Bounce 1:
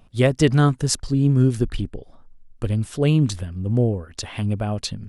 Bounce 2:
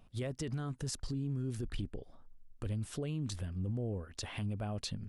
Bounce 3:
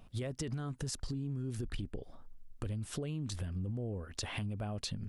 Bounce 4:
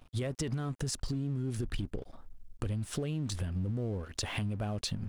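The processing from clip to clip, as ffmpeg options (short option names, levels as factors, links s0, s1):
-af "acompressor=threshold=0.0891:ratio=3,alimiter=limit=0.0891:level=0:latency=1:release=20,volume=0.376"
-af "acompressor=threshold=0.0112:ratio=6,volume=1.68"
-af "aeval=exprs='sgn(val(0))*max(abs(val(0))-0.00119,0)':c=same,volume=1.68"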